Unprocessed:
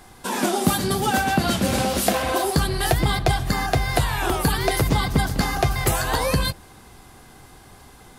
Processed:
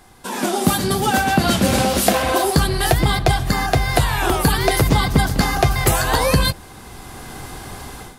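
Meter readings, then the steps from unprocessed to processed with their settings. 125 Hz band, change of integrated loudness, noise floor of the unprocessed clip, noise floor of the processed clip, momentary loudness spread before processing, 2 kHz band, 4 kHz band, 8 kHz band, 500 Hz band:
+4.5 dB, +4.0 dB, -47 dBFS, -40 dBFS, 3 LU, +4.0 dB, +4.5 dB, +4.0 dB, +4.0 dB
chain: AGC gain up to 15 dB; gain -1.5 dB

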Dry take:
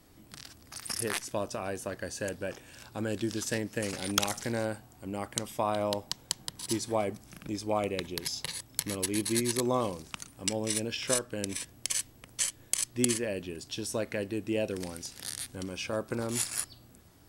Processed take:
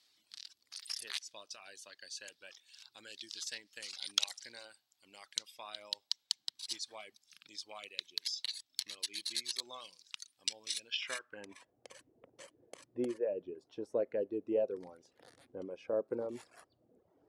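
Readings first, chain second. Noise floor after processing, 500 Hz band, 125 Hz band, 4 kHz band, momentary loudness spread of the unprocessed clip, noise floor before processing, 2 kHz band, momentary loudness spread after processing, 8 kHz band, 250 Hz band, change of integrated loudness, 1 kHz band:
-80 dBFS, -6.5 dB, under -20 dB, -2.0 dB, 11 LU, -57 dBFS, -9.5 dB, 19 LU, -12.5 dB, -13.0 dB, -7.0 dB, -16.5 dB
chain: reverb removal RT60 0.94 s; band-pass sweep 4100 Hz -> 490 Hz, 10.85–11.75; gain +2.5 dB

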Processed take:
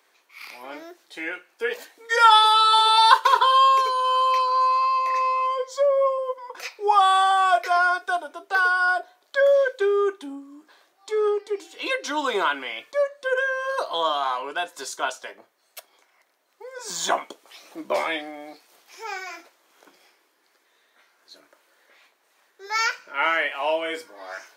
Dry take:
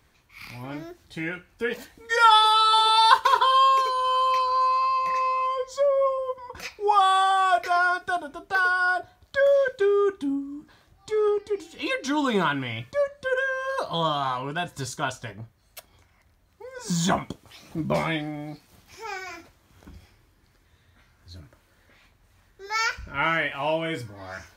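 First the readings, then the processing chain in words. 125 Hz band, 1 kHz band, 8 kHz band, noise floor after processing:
under -25 dB, +2.0 dB, +2.0 dB, -66 dBFS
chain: HPF 380 Hz 24 dB/oct; gain +2 dB

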